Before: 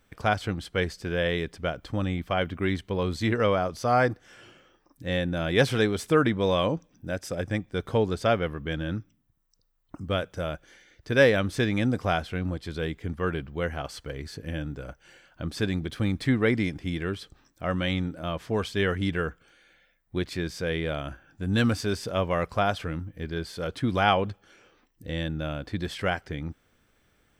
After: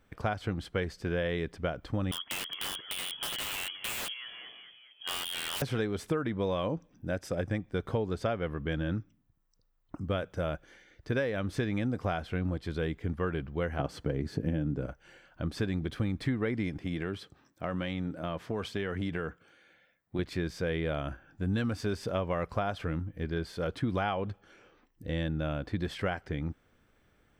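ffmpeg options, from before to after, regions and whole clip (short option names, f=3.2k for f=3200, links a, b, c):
-filter_complex "[0:a]asettb=1/sr,asplit=3[a][b][c];[a]atrim=end=2.114[d];[b]atrim=start=2.11:end=5.62,asetpts=PTS-STARTPTS,afade=t=in:d=0.004:c=qsin,afade=t=out:st=3.506:d=0.004:c=qsin,asplit=6[e][f][g][h][i][j];[f]adelay=212,afreqshift=-79,volume=-19.5dB[k];[g]adelay=424,afreqshift=-158,volume=-24.1dB[l];[h]adelay=636,afreqshift=-237,volume=-28.7dB[m];[i]adelay=848,afreqshift=-316,volume=-33.2dB[n];[j]adelay=1060,afreqshift=-395,volume=-37.8dB[o];[e][k][l][m][n][o]amix=inputs=6:normalize=0,atrim=end_sample=154791,lowpass=f=2.9k:t=q:w=0.5098,lowpass=f=2.9k:t=q:w=0.6013,lowpass=f=2.9k:t=q:w=0.9,lowpass=f=2.9k:t=q:w=2.563,afreqshift=-3400,aeval=exprs='(mod(11.2*val(0)+1,2)-1)/11.2':c=same[p];[c]atrim=start=5.616[q];[d][p]acrossfade=d=0.004:c1=hsin:c2=qsin[r];[r][q]acrossfade=d=0.004:c1=qsin:c2=hsin,asettb=1/sr,asplit=3[s][t][u];[s]atrim=end=13.794[v];[t]atrim=start=13.79:end=14.86,asetpts=PTS-STARTPTS,afade=t=in:d=0.004:c=qsin,afade=t=out:st=1.066:d=0.004:c=qsin,highpass=43,equalizer=f=220:w=0.46:g=12.5[w];[u]atrim=start=14.856[x];[v][w]acrossfade=d=0.004:c1=hsin:c2=qsin[y];[y][x]acrossfade=d=0.004:c1=qsin:c2=hsin,asettb=1/sr,asplit=3[z][aa][ab];[z]atrim=end=16.794[ac];[aa]atrim=start=16.79:end=20.19,asetpts=PTS-STARTPTS,afade=t=in:d=0.004:c=qsin,afade=t=out:st=3.396:d=0.004:c=qsin,highpass=96,acompressor=threshold=-27dB:ratio=6:attack=3.2:release=140:knee=1:detection=peak[ad];[ab]atrim=start=20.186[ae];[ac][ad]acrossfade=d=0.004:c1=hsin:c2=qsin[af];[af][ae]acrossfade=d=0.004:c1=qsin:c2=hsin,highshelf=f=11k:g=4,acompressor=threshold=-26dB:ratio=12,highshelf=f=3.5k:g=-10"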